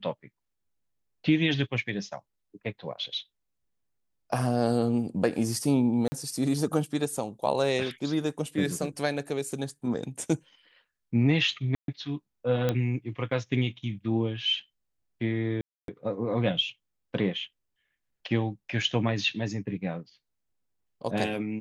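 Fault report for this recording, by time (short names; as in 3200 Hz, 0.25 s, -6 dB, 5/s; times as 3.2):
6.08–6.12 gap 40 ms
11.75–11.88 gap 0.132 s
12.69 pop -13 dBFS
15.61–15.88 gap 0.272 s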